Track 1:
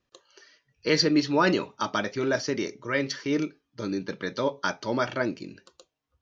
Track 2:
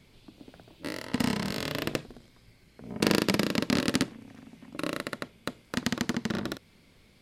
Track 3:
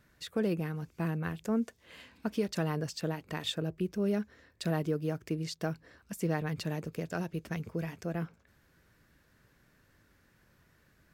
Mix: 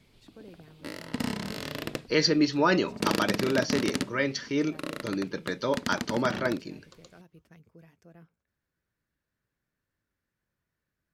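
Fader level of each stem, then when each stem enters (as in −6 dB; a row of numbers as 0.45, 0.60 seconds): −1.0, −3.5, −18.5 decibels; 1.25, 0.00, 0.00 seconds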